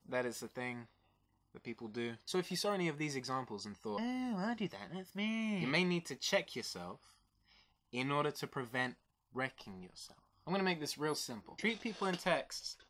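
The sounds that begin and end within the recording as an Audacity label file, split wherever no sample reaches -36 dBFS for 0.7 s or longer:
1.670000	6.910000	sound
7.940000	9.470000	sound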